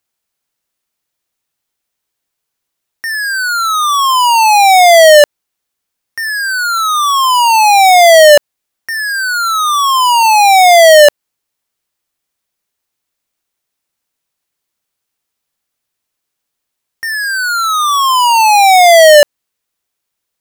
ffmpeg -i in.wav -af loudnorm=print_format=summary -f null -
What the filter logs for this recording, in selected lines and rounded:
Input Integrated:     -7.3 LUFS
Input True Peak:      -0.4 dBTP
Input LRA:             9.2 LU
Input Threshold:     -17.6 LUFS